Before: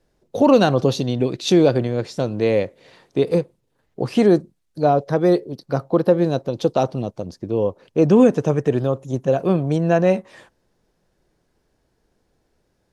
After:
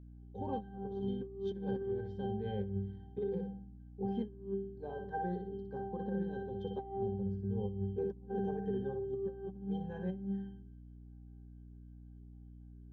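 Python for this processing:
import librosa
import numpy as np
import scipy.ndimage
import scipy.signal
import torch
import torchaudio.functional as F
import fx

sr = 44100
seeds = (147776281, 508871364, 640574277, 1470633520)

y = fx.wow_flutter(x, sr, seeds[0], rate_hz=2.1, depth_cents=17.0)
y = fx.octave_resonator(y, sr, note='G', decay_s=0.67)
y = fx.echo_feedback(y, sr, ms=61, feedback_pct=34, wet_db=-7)
y = fx.over_compress(y, sr, threshold_db=-38.0, ratio=-0.5)
y = fx.add_hum(y, sr, base_hz=60, snr_db=13)
y = y * 10.0 ** (1.0 / 20.0)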